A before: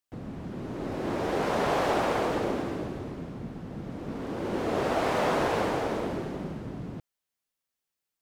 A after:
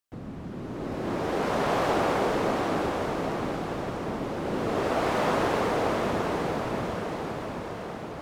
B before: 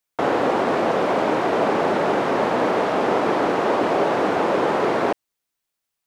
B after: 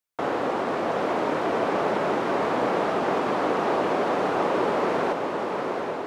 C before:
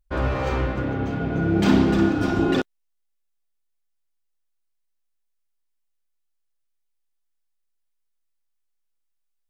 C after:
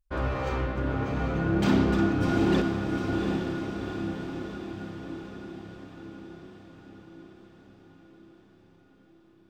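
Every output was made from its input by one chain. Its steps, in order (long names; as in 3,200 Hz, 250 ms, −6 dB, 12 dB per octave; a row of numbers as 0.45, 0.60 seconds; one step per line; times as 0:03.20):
parametric band 1,200 Hz +2 dB 0.4 octaves
feedback delay with all-pass diffusion 777 ms, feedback 61%, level −4 dB
normalise the peak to −12 dBFS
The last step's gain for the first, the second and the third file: 0.0, −6.5, −5.5 decibels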